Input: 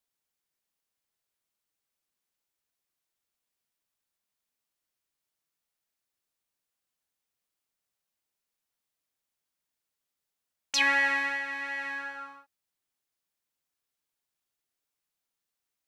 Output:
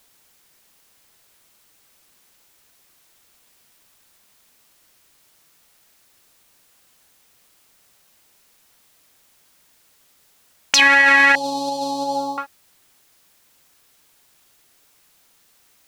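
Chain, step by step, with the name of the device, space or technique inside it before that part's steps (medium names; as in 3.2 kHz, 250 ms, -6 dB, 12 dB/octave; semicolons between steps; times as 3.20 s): loud club master (compression 2.5:1, threshold -29 dBFS, peak gain reduction 6 dB; hard clipper -20 dBFS, distortion -36 dB; loudness maximiser +31.5 dB); 11.35–12.38 s: elliptic band-stop 800–4100 Hz, stop band 60 dB; trim -3.5 dB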